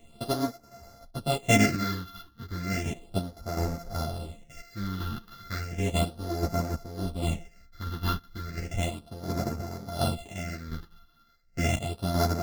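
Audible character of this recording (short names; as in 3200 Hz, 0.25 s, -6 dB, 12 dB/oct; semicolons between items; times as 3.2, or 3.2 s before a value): a buzz of ramps at a fixed pitch in blocks of 64 samples; phasing stages 6, 0.34 Hz, lowest notch 600–3000 Hz; chopped level 1.4 Hz, depth 60%, duty 45%; a shimmering, thickened sound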